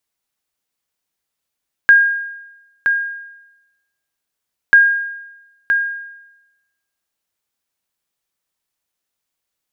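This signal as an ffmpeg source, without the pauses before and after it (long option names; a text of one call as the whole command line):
ffmpeg -f lavfi -i "aevalsrc='0.75*(sin(2*PI*1620*mod(t,2.84))*exp(-6.91*mod(t,2.84)/0.98)+0.447*sin(2*PI*1620*max(mod(t,2.84)-0.97,0))*exp(-6.91*max(mod(t,2.84)-0.97,0)/0.98))':duration=5.68:sample_rate=44100" out.wav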